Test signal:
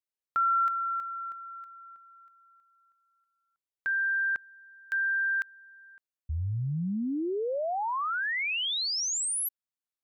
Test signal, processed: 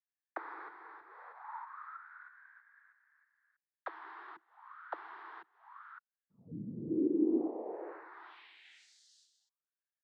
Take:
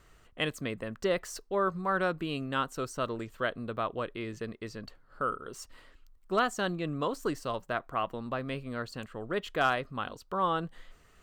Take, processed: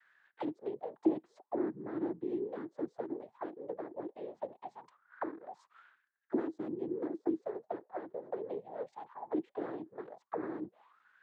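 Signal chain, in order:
cochlear-implant simulation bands 6
envelope filter 320–1,700 Hz, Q 8.3, down, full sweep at −29.5 dBFS
level +7.5 dB

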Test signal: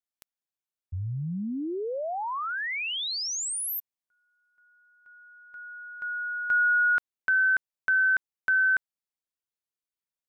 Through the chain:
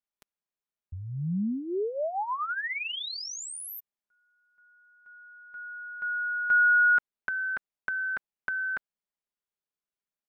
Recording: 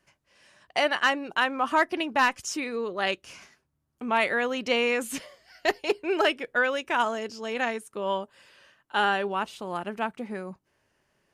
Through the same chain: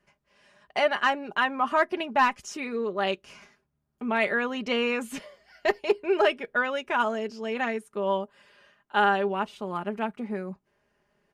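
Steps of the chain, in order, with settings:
high-shelf EQ 3,400 Hz −10 dB
comb filter 4.9 ms, depth 54%

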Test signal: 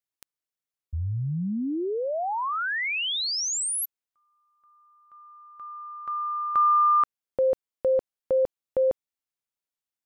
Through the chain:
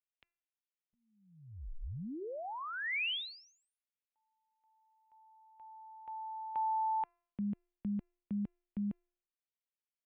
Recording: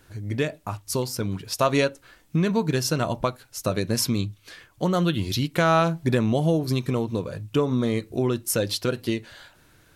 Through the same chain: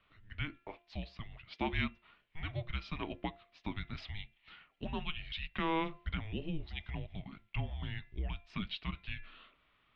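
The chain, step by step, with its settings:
flat-topped bell 860 Hz −8 dB 2.6 octaves
hum removal 337.5 Hz, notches 9
single-sideband voice off tune −320 Hz 340–3,500 Hz
level −5.5 dB

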